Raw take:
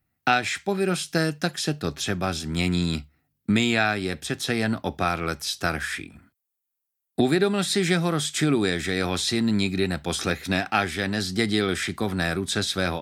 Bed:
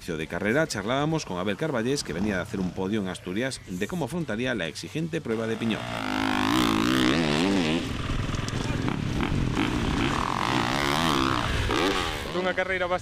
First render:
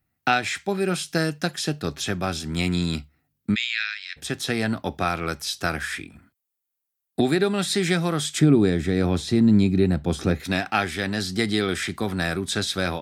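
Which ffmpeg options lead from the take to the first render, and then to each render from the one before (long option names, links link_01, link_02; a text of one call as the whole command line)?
ffmpeg -i in.wav -filter_complex "[0:a]asplit=3[link_01][link_02][link_03];[link_01]afade=type=out:start_time=3.54:duration=0.02[link_04];[link_02]asuperpass=centerf=3300:order=8:qfactor=0.73,afade=type=in:start_time=3.54:duration=0.02,afade=type=out:start_time=4.16:duration=0.02[link_05];[link_03]afade=type=in:start_time=4.16:duration=0.02[link_06];[link_04][link_05][link_06]amix=inputs=3:normalize=0,asettb=1/sr,asplit=3[link_07][link_08][link_09];[link_07]atrim=end=8.394[link_10];[link_08]atrim=start=8.39:end=10.4,asetpts=PTS-STARTPTS,afade=type=in:duration=0.004:curve=qsin,afade=type=out:start_time=2.006:duration=0.004:curve=qsin,tiltshelf=frequency=680:gain=8[link_11];[link_09]atrim=start=10.396[link_12];[link_10][link_11]acrossfade=duration=0.004:curve1=hsin:curve2=qsin[link_13];[link_13][link_12]acrossfade=duration=0.004:curve1=qsin:curve2=hsin" out.wav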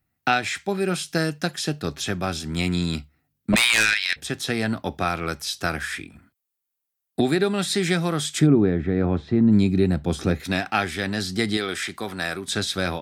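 ffmpeg -i in.wav -filter_complex "[0:a]asplit=3[link_01][link_02][link_03];[link_01]afade=type=out:start_time=3.52:duration=0.02[link_04];[link_02]aeval=exprs='0.251*sin(PI/2*2.82*val(0)/0.251)':channel_layout=same,afade=type=in:start_time=3.52:duration=0.02,afade=type=out:start_time=4.15:duration=0.02[link_05];[link_03]afade=type=in:start_time=4.15:duration=0.02[link_06];[link_04][link_05][link_06]amix=inputs=3:normalize=0,asplit=3[link_07][link_08][link_09];[link_07]afade=type=out:start_time=8.46:duration=0.02[link_10];[link_08]lowpass=1700,afade=type=in:start_time=8.46:duration=0.02,afade=type=out:start_time=9.51:duration=0.02[link_11];[link_09]afade=type=in:start_time=9.51:duration=0.02[link_12];[link_10][link_11][link_12]amix=inputs=3:normalize=0,asettb=1/sr,asplit=3[link_13][link_14][link_15];[link_13]atrim=end=11.574[link_16];[link_14]atrim=start=11.57:end=12.48,asetpts=PTS-STARTPTS,afade=type=in:duration=0.004:curve=qsin,afade=type=out:start_time=0.906:duration=0.004:curve=qsin,lowshelf=frequency=280:gain=-11.5[link_17];[link_15]atrim=start=12.476[link_18];[link_16][link_17]acrossfade=duration=0.004:curve1=hsin:curve2=qsin[link_19];[link_19][link_18]acrossfade=duration=0.004:curve1=qsin:curve2=hsin" out.wav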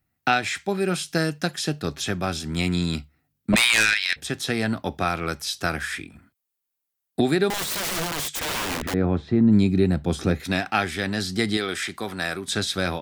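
ffmpeg -i in.wav -filter_complex "[0:a]asettb=1/sr,asplit=3[link_01][link_02][link_03];[link_01]atrim=end=7.504[link_04];[link_02]atrim=start=7.5:end=8.94,asetpts=PTS-STARTPTS,afade=type=in:duration=0.004:curve=qsin,afade=type=out:start_time=1.436:duration=0.004:curve=qsin,aeval=exprs='(mod(13.3*val(0)+1,2)-1)/13.3':channel_layout=same[link_05];[link_03]atrim=start=8.936[link_06];[link_04][link_05]acrossfade=duration=0.004:curve1=hsin:curve2=qsin[link_07];[link_07][link_06]acrossfade=duration=0.004:curve1=qsin:curve2=hsin" out.wav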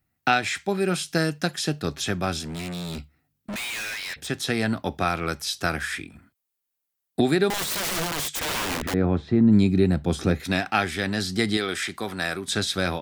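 ffmpeg -i in.wav -filter_complex "[0:a]asettb=1/sr,asplit=3[link_01][link_02][link_03];[link_01]atrim=end=2.434[link_04];[link_02]atrim=start=2.43:end=4.28,asetpts=PTS-STARTPTS,afade=type=in:duration=0.004:curve=qsin,afade=type=out:start_time=1.846:duration=0.004:curve=qsin,volume=30.5dB,asoftclip=hard,volume=-30.5dB[link_05];[link_03]atrim=start=4.276[link_06];[link_04][link_05]acrossfade=duration=0.004:curve1=hsin:curve2=qsin[link_07];[link_07][link_06]acrossfade=duration=0.004:curve1=qsin:curve2=hsin" out.wav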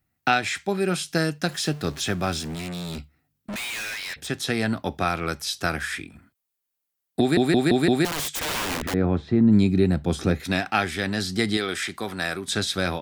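ffmpeg -i in.wav -filter_complex "[0:a]asettb=1/sr,asplit=3[link_01][link_02][link_03];[link_01]atrim=end=1.484[link_04];[link_02]atrim=start=1.48:end=2.55,asetpts=PTS-STARTPTS,afade=type=in:duration=0.004:curve=qsin,afade=type=out:start_time=1.066:duration=0.004:curve=qsin,aeval=exprs='val(0)+0.5*0.0112*sgn(val(0))':channel_layout=same[link_05];[link_03]atrim=start=2.546[link_06];[link_04][link_05]acrossfade=duration=0.004:curve1=hsin:curve2=qsin[link_07];[link_07][link_06]acrossfade=duration=0.004:curve1=qsin:curve2=hsin,asplit=6[link_08][link_09][link_10][link_11][link_12][link_13];[link_08]atrim=end=7.372[link_14];[link_09]atrim=start=7.198:end=7.372[link_15];[link_10]atrim=start=7.198:end=7.372[link_16];[link_11]atrim=start=7.198:end=7.372[link_17];[link_12]atrim=start=7.198:end=7.372[link_18];[link_13]atrim=start=8.048[link_19];[link_14][link_15]acrossfade=duration=0.004:curve1=hsin:curve2=hsin[link_20];[link_20][link_16]acrossfade=duration=0.004:curve1=hsin:curve2=hsin[link_21];[link_21][link_17]acrossfade=duration=0.004:curve1=hsin:curve2=hsin[link_22];[link_22][link_18]acrossfade=duration=0.004:curve1=hsin:curve2=hsin[link_23];[link_23][link_19]acrossfade=duration=0.004:curve1=hsin:curve2=hsin" out.wav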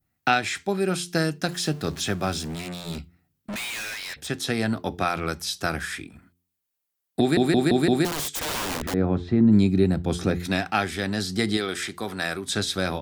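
ffmpeg -i in.wav -af "bandreject=frequency=87.78:width_type=h:width=4,bandreject=frequency=175.56:width_type=h:width=4,bandreject=frequency=263.34:width_type=h:width=4,bandreject=frequency=351.12:width_type=h:width=4,bandreject=frequency=438.9:width_type=h:width=4,adynamicequalizer=threshold=0.0112:dfrequency=2200:dqfactor=0.99:tfrequency=2200:tqfactor=0.99:attack=5:release=100:ratio=0.375:range=2:mode=cutabove:tftype=bell" out.wav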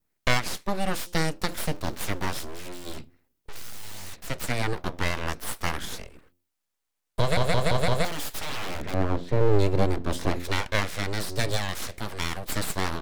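ffmpeg -i in.wav -af "aeval=exprs='abs(val(0))':channel_layout=same" out.wav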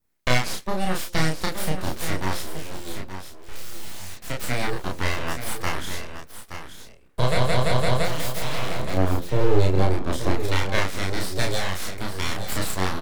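ffmpeg -i in.wav -filter_complex "[0:a]asplit=2[link_01][link_02];[link_02]adelay=32,volume=-2dB[link_03];[link_01][link_03]amix=inputs=2:normalize=0,aecho=1:1:874:0.316" out.wav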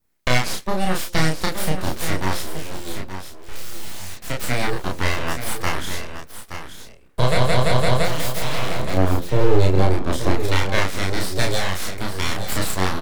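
ffmpeg -i in.wav -af "volume=3.5dB,alimiter=limit=-3dB:level=0:latency=1" out.wav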